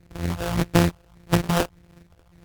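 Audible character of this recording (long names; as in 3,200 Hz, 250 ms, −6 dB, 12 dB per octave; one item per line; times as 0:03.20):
a buzz of ramps at a fixed pitch in blocks of 256 samples
phaser sweep stages 4, 1.7 Hz, lowest notch 220–3,400 Hz
aliases and images of a low sample rate 2,100 Hz, jitter 20%
AAC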